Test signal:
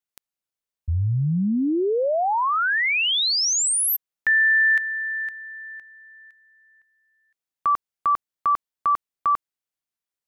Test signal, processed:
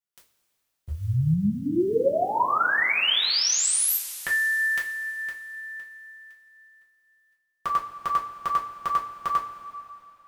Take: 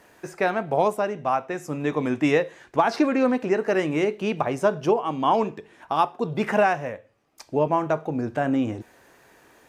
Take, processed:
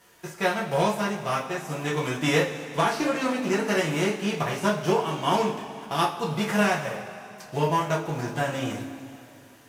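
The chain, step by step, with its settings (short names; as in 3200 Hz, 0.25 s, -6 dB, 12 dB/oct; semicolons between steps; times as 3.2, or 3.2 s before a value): spectral whitening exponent 0.6; two-slope reverb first 0.26 s, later 3 s, from -19 dB, DRR -4.5 dB; gain -7.5 dB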